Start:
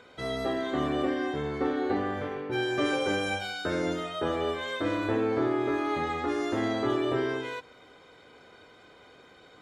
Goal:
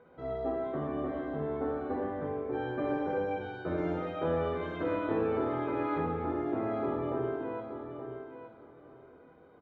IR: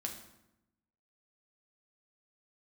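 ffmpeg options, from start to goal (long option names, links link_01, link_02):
-filter_complex "[0:a]asetnsamples=nb_out_samples=441:pad=0,asendcmd='3.78 lowpass f 1800;5.98 lowpass f 1000',lowpass=1100,aecho=1:1:875|1750|2625:0.376|0.0752|0.015[link_01];[1:a]atrim=start_sample=2205,atrim=end_sample=6174,asetrate=32634,aresample=44100[link_02];[link_01][link_02]afir=irnorm=-1:irlink=0,volume=-4dB"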